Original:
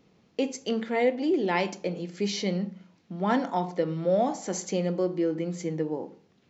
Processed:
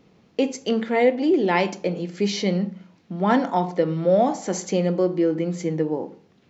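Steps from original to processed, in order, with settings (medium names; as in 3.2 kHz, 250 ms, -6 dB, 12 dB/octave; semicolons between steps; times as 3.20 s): treble shelf 4.4 kHz -4.5 dB; trim +6 dB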